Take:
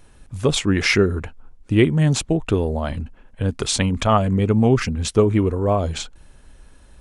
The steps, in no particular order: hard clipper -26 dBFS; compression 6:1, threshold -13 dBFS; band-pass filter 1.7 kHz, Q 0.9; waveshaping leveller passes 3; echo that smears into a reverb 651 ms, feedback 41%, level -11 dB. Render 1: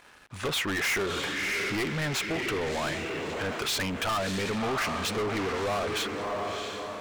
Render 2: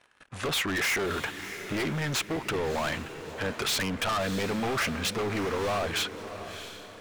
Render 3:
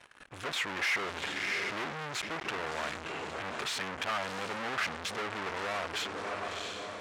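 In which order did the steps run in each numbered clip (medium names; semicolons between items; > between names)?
echo that smears into a reverb > compression > band-pass filter > hard clipper > waveshaping leveller; waveshaping leveller > band-pass filter > compression > hard clipper > echo that smears into a reverb; compression > waveshaping leveller > echo that smears into a reverb > hard clipper > band-pass filter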